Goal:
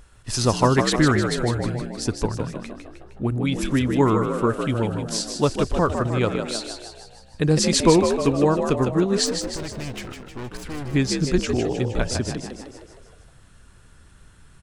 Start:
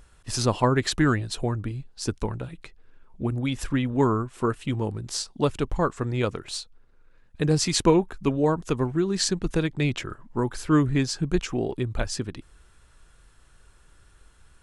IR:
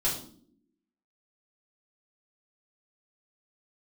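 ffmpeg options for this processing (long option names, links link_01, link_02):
-filter_complex "[0:a]asplit=3[link_01][link_02][link_03];[link_01]afade=type=out:start_time=9.25:duration=0.02[link_04];[link_02]aeval=exprs='(tanh(50.1*val(0)+0.75)-tanh(0.75))/50.1':channel_layout=same,afade=type=in:start_time=9.25:duration=0.02,afade=type=out:start_time=10.93:duration=0.02[link_05];[link_03]afade=type=in:start_time=10.93:duration=0.02[link_06];[link_04][link_05][link_06]amix=inputs=3:normalize=0,asplit=8[link_07][link_08][link_09][link_10][link_11][link_12][link_13][link_14];[link_08]adelay=155,afreqshift=59,volume=-6.5dB[link_15];[link_09]adelay=310,afreqshift=118,volume=-11.7dB[link_16];[link_10]adelay=465,afreqshift=177,volume=-16.9dB[link_17];[link_11]adelay=620,afreqshift=236,volume=-22.1dB[link_18];[link_12]adelay=775,afreqshift=295,volume=-27.3dB[link_19];[link_13]adelay=930,afreqshift=354,volume=-32.5dB[link_20];[link_14]adelay=1085,afreqshift=413,volume=-37.7dB[link_21];[link_07][link_15][link_16][link_17][link_18][link_19][link_20][link_21]amix=inputs=8:normalize=0,volume=3dB"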